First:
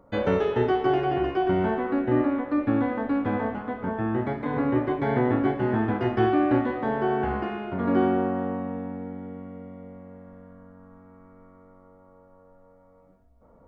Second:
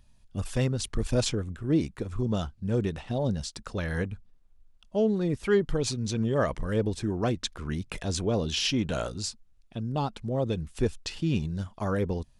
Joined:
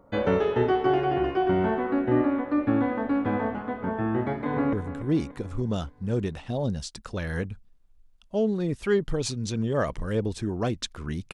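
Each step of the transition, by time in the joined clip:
first
0:04.41–0:04.73: delay throw 290 ms, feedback 55%, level −11.5 dB
0:04.73: continue with second from 0:01.34

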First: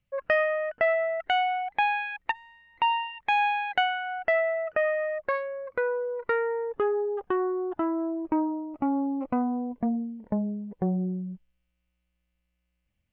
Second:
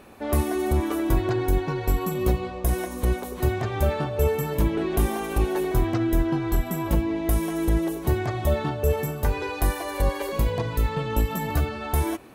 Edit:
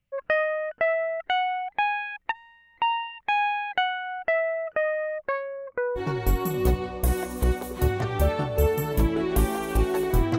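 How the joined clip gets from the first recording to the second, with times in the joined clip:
first
0:05.56–0:06.01: low-pass filter 3,100 Hz → 1,200 Hz
0:05.98: continue with second from 0:01.59, crossfade 0.06 s

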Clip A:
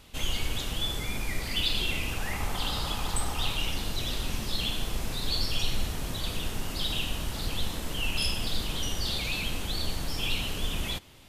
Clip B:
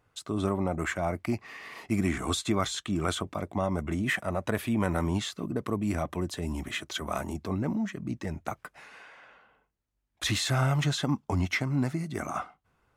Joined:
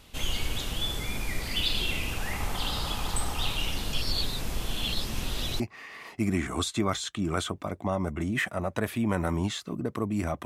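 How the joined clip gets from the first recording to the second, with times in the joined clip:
clip A
0:03.93–0:05.60: reverse
0:05.60: continue with clip B from 0:01.31

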